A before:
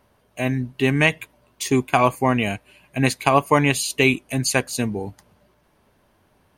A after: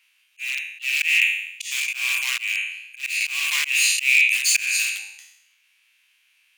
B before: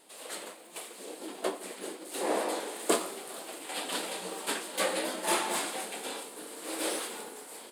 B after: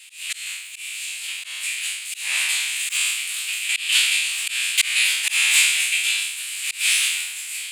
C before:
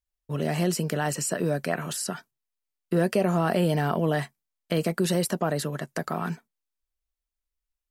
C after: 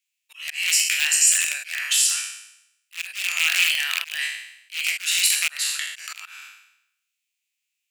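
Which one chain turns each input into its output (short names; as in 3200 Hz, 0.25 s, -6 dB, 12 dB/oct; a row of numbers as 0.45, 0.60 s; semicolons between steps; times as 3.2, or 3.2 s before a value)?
spectral trails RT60 0.79 s; in parallel at -3 dB: wrapped overs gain 14.5 dB; on the sum: ladder high-pass 2300 Hz, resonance 70%; auto swell 0.211 s; bell 7200 Hz +6.5 dB 0.34 oct; match loudness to -20 LUFS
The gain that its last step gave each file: +6.5, +18.0, +13.5 dB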